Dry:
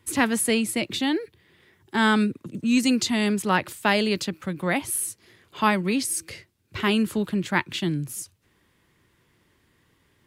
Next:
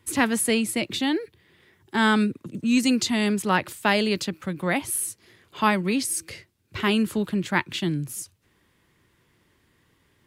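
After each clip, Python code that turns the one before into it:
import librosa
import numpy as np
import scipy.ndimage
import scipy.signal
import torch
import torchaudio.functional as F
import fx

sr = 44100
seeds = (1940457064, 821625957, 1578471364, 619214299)

y = x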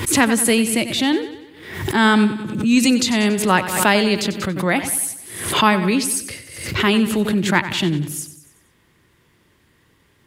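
y = fx.echo_feedback(x, sr, ms=94, feedback_pct=51, wet_db=-12.5)
y = fx.pre_swell(y, sr, db_per_s=68.0)
y = y * 10.0 ** (5.5 / 20.0)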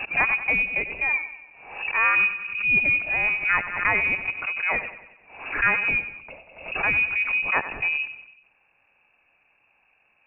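y = fx.air_absorb(x, sr, metres=190.0)
y = fx.freq_invert(y, sr, carrier_hz=2700)
y = y * 10.0 ** (-5.5 / 20.0)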